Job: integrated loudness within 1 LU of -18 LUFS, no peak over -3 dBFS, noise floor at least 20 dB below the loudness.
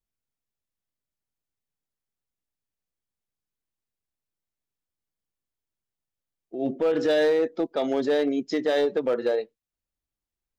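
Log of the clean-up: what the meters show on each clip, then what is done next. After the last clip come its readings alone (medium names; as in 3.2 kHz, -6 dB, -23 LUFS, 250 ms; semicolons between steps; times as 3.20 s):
clipped samples 0.7%; clipping level -17.0 dBFS; loudness -25.0 LUFS; peak level -17.0 dBFS; loudness target -18.0 LUFS
-> clip repair -17 dBFS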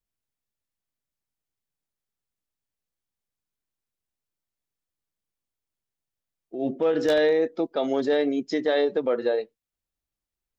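clipped samples 0.0%; loudness -24.5 LUFS; peak level -10.5 dBFS; loudness target -18.0 LUFS
-> trim +6.5 dB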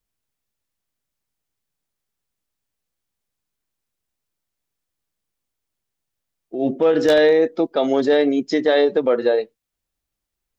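loudness -18.0 LUFS; peak level -4.0 dBFS; noise floor -82 dBFS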